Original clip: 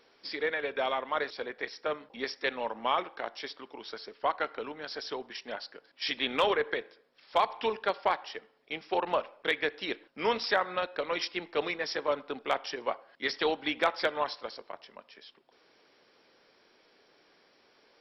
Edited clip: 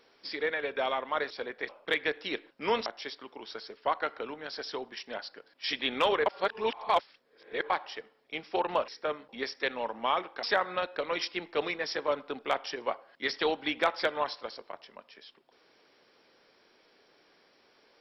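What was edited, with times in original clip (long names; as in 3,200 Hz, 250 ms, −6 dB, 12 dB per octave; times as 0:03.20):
0:01.69–0:03.24: swap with 0:09.26–0:10.43
0:06.64–0:08.08: reverse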